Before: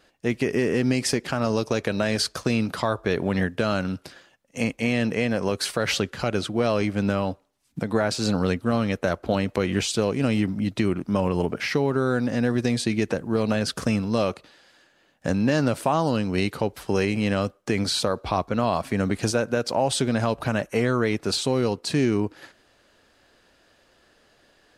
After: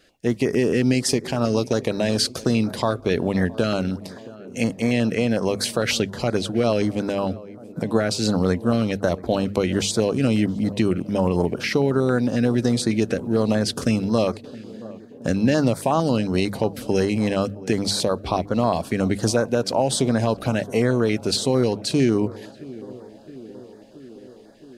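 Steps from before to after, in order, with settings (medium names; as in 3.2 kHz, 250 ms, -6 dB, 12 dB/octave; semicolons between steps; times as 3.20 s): hum notches 50/100/150/200 Hz; on a send: tape echo 670 ms, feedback 83%, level -17.5 dB, low-pass 1.1 kHz; on the sum: step-sequenced notch 11 Hz 950–2800 Hz; trim +3.5 dB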